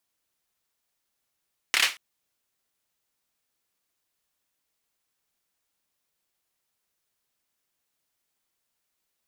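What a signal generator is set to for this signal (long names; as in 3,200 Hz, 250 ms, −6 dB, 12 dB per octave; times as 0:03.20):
synth clap length 0.23 s, bursts 4, apart 28 ms, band 2,400 Hz, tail 0.26 s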